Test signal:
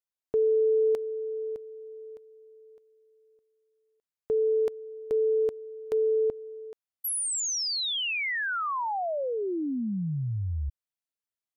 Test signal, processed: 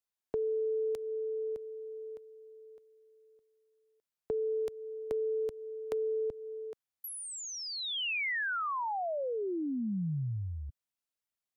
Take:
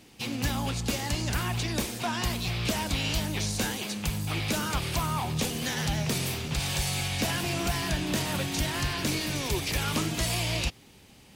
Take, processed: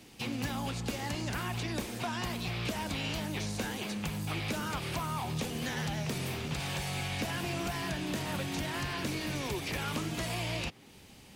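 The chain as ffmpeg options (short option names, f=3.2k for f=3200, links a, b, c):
-filter_complex "[0:a]acrossover=split=120|2800[a][b][c];[a]acompressor=threshold=-45dB:ratio=5[d];[b]acompressor=threshold=-34dB:ratio=3[e];[c]acompressor=threshold=-48dB:ratio=2.5[f];[d][e][f]amix=inputs=3:normalize=0"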